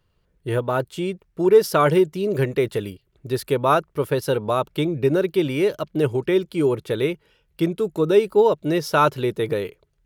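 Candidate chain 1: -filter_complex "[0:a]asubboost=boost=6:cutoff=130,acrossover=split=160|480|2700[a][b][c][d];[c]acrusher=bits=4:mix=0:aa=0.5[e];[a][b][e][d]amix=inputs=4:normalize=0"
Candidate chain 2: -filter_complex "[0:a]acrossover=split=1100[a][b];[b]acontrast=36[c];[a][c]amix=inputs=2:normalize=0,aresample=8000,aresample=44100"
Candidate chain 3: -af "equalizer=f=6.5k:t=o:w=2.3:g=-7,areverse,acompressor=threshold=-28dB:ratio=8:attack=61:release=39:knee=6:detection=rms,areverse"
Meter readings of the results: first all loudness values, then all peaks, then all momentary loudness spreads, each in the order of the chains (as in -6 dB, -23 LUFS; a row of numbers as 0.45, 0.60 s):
-22.0, -20.5, -29.0 LUFS; -4.0, -3.0, -15.0 dBFS; 9, 11, 5 LU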